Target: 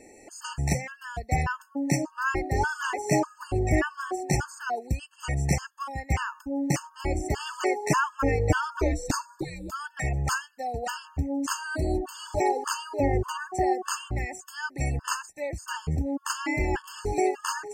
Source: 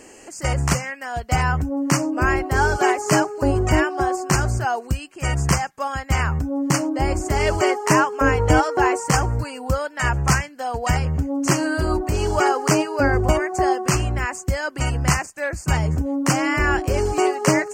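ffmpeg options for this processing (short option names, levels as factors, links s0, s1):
-filter_complex "[0:a]asettb=1/sr,asplit=3[s0][s1][s2];[s0]atrim=end=8.794[s3];[s1]atrim=start=8.79:end=9.72,asetpts=PTS-STARTPTS,afade=t=in:d=0.004:c=qsin,afade=t=out:st=0.926:d=0.004:c=qsin,afreqshift=-440[s4];[s2]atrim=start=9.716[s5];[s3][s4]acrossfade=d=0.004:c1=hsin:c2=qsin[s6];[s6][s5]acrossfade=d=0.004:c1=qsin:c2=hsin,afftfilt=real='re*gt(sin(2*PI*1.7*pts/sr)*(1-2*mod(floor(b*sr/1024/890),2)),0)':imag='im*gt(sin(2*PI*1.7*pts/sr)*(1-2*mod(floor(b*sr/1024/890),2)),0)':win_size=1024:overlap=0.75,volume=0.562"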